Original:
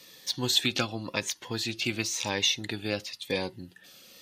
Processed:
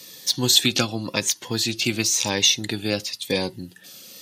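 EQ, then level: HPF 100 Hz; tone controls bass +1 dB, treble +9 dB; low shelf 480 Hz +5 dB; +3.5 dB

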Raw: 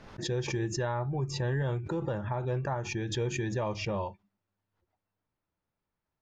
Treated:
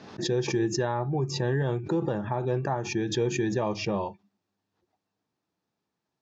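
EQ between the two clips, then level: dynamic EQ 4100 Hz, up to -3 dB, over -53 dBFS, Q 0.8; speaker cabinet 180–6600 Hz, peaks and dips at 560 Hz -7 dB, 980 Hz -5 dB, 1400 Hz -7 dB, 2100 Hz -7 dB, 3000 Hz -4 dB; +8.5 dB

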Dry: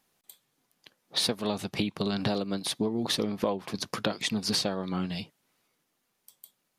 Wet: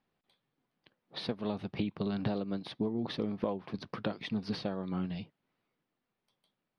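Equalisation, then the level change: running mean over 6 samples; air absorption 75 m; low shelf 370 Hz +5 dB; -7.0 dB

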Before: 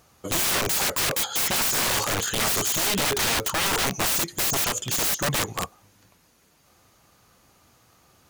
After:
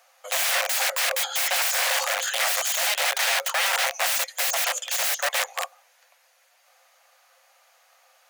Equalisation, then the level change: rippled Chebyshev high-pass 510 Hz, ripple 6 dB; +4.5 dB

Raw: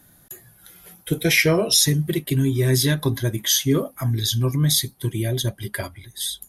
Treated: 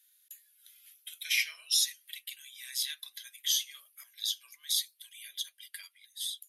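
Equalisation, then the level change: ladder high-pass 2200 Hz, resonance 35%; -3.5 dB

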